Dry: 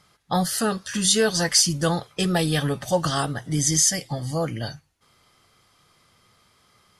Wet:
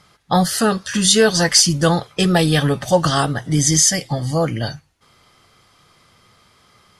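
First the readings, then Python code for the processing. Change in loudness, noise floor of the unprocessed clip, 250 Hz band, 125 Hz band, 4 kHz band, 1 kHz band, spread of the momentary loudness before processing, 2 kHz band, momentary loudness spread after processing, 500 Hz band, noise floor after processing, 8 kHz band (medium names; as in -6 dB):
+6.0 dB, -62 dBFS, +7.0 dB, +7.0 dB, +6.0 dB, +7.0 dB, 10 LU, +7.0 dB, 8 LU, +7.0 dB, -55 dBFS, +4.5 dB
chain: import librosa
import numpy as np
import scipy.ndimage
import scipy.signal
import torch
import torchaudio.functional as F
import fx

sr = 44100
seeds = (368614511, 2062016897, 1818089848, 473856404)

y = fx.high_shelf(x, sr, hz=9300.0, db=-7.0)
y = y * librosa.db_to_amplitude(7.0)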